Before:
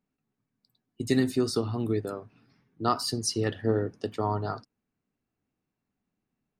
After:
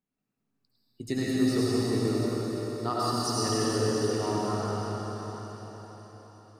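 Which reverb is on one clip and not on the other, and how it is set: algorithmic reverb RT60 5 s, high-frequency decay 1×, pre-delay 50 ms, DRR -8 dB; trim -7 dB

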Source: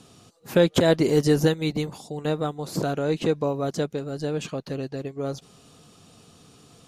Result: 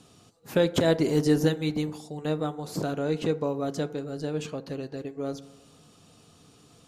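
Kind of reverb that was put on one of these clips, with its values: FDN reverb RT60 1 s, low-frequency decay 0.7×, high-frequency decay 0.35×, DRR 12.5 dB; trim -4 dB

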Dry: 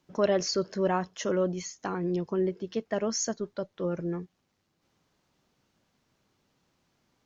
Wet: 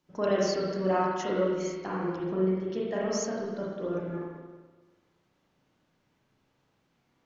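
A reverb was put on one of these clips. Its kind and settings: spring tank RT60 1.4 s, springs 30/37/48 ms, chirp 50 ms, DRR -5.5 dB; trim -5.5 dB

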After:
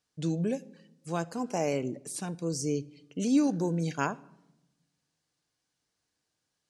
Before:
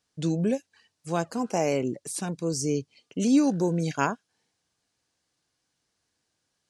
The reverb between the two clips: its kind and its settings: simulated room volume 3300 m³, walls furnished, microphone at 0.45 m; trim -4.5 dB

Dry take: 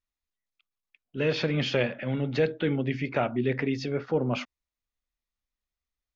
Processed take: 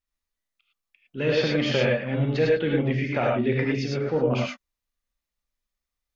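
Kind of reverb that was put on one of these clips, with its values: gated-style reverb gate 130 ms rising, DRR -1.5 dB

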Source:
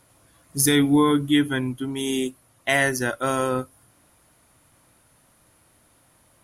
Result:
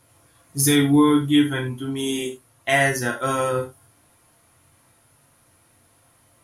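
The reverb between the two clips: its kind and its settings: gated-style reverb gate 120 ms falling, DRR 0 dB; trim -2 dB

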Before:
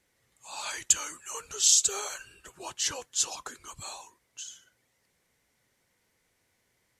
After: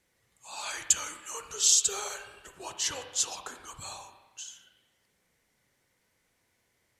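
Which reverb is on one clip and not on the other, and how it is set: spring tank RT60 1.1 s, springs 32/37/43 ms, chirp 50 ms, DRR 6 dB; trim -1 dB

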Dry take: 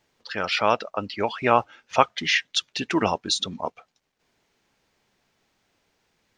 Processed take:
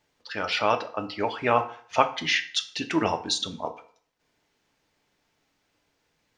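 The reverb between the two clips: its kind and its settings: FDN reverb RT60 0.52 s, low-frequency decay 0.85×, high-frequency decay 0.8×, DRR 6.5 dB; trim -3 dB

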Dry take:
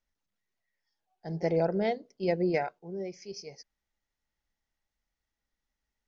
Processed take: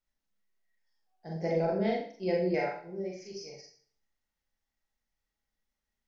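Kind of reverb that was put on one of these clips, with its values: Schroeder reverb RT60 0.49 s, combs from 29 ms, DRR -2 dB; trim -5 dB

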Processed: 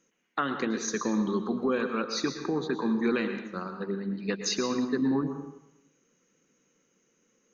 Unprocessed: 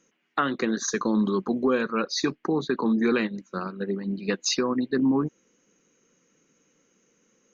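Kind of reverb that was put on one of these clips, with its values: plate-style reverb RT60 0.85 s, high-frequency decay 0.8×, pre-delay 100 ms, DRR 6.5 dB; trim -4.5 dB

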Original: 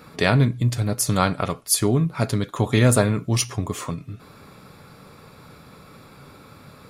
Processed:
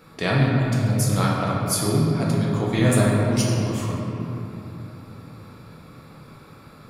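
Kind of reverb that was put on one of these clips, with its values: simulated room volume 150 m³, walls hard, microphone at 0.69 m; trim -6 dB

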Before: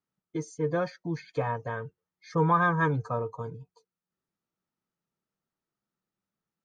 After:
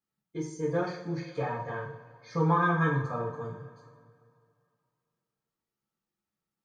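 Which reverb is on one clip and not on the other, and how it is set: two-slope reverb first 0.48 s, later 2.4 s, from -18 dB, DRR -4.5 dB; trim -6.5 dB

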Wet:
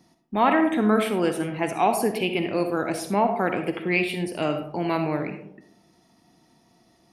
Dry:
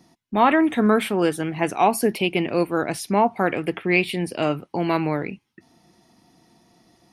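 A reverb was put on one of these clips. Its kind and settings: algorithmic reverb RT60 0.77 s, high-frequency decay 0.35×, pre-delay 20 ms, DRR 6.5 dB; trim -3.5 dB

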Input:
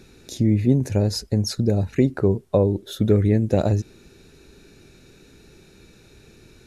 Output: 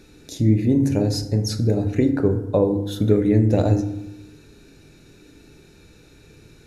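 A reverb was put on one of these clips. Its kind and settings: FDN reverb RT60 0.89 s, low-frequency decay 1.35×, high-frequency decay 0.5×, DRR 5 dB; trim -1 dB

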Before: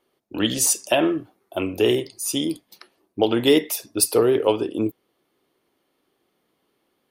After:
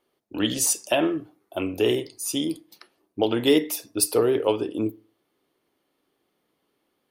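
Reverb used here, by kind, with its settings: FDN reverb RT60 0.42 s, low-frequency decay 1×, high-frequency decay 0.6×, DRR 17.5 dB; trim -3 dB

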